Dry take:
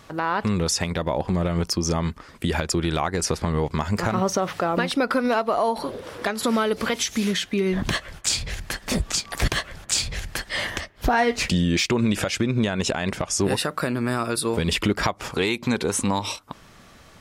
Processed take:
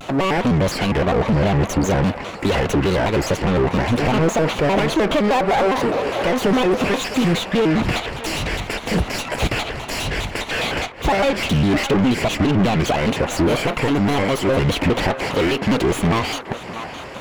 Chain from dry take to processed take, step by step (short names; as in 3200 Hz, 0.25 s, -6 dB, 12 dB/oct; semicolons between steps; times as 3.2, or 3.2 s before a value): minimum comb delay 0.35 ms; low shelf 110 Hz +6.5 dB; overdrive pedal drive 30 dB, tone 1200 Hz, clips at -9 dBFS; narrowing echo 0.649 s, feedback 67%, band-pass 1200 Hz, level -9 dB; shaped vibrato square 4.9 Hz, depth 250 cents